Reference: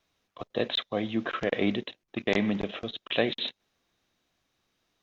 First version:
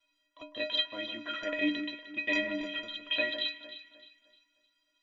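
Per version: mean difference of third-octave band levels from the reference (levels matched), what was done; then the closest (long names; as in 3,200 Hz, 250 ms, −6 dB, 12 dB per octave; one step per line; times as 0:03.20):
7.5 dB: parametric band 2,800 Hz +12 dB 2.4 octaves
stiff-string resonator 290 Hz, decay 0.39 s, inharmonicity 0.03
on a send: delay that swaps between a low-pass and a high-pass 153 ms, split 2,000 Hz, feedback 58%, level −8 dB
on the sum: level +6 dB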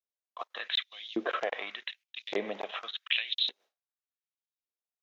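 10.0 dB: downward expander −52 dBFS
downward compressor 4 to 1, threshold −28 dBFS, peak gain reduction 8 dB
auto-filter high-pass saw up 0.86 Hz 370–4,700 Hz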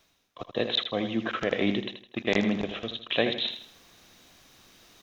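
3.0 dB: high-shelf EQ 4,700 Hz +6.5 dB
reversed playback
upward compression, threshold −41 dBFS
reversed playback
repeating echo 80 ms, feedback 36%, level −9 dB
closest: third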